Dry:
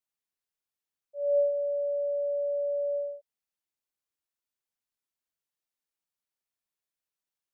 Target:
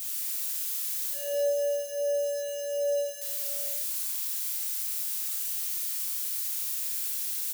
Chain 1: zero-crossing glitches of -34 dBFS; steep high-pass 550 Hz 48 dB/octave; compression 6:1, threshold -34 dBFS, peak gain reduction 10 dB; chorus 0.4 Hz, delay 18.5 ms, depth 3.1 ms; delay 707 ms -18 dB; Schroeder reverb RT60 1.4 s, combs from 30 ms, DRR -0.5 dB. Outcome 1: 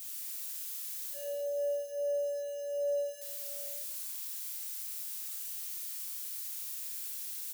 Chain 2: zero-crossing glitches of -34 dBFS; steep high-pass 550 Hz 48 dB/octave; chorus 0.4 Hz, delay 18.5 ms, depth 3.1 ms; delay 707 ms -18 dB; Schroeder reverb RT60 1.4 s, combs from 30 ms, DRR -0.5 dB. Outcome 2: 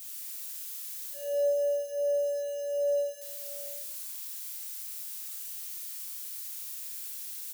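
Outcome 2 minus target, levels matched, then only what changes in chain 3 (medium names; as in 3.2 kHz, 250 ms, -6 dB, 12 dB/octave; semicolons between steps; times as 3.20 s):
zero-crossing glitches: distortion -8 dB
change: zero-crossing glitches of -26 dBFS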